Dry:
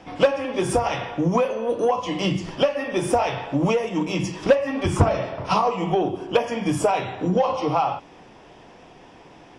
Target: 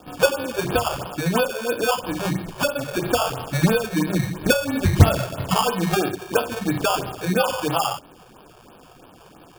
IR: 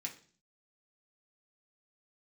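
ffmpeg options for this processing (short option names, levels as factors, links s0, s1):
-filter_complex "[0:a]asettb=1/sr,asplit=3[s0][s1][s2];[s0]atrim=end=3.394[s3];[s1]atrim=start=3.39:end=6.01,asetpts=PTS-STARTPTS,afade=t=in:d=0.004:c=qsin,afade=t=out:st=2.616:d=0.004:c=qsin,bass=f=250:g=7,treble=f=4000:g=-15[s4];[s2]atrim=start=6.006[s5];[s3][s4]acrossfade=d=0.004:c1=hsin:c2=qsin[s6];[s6][s5]acrossfade=d=0.004:c1=qsin:c2=hsin,acrusher=samples=22:mix=1:aa=0.000001,afftfilt=real='re*(1-between(b*sr/1024,220*pow(7500/220,0.5+0.5*sin(2*PI*3*pts/sr))/1.41,220*pow(7500/220,0.5+0.5*sin(2*PI*3*pts/sr))*1.41))':imag='im*(1-between(b*sr/1024,220*pow(7500/220,0.5+0.5*sin(2*PI*3*pts/sr))/1.41,220*pow(7500/220,0.5+0.5*sin(2*PI*3*pts/sr))*1.41))':win_size=1024:overlap=0.75"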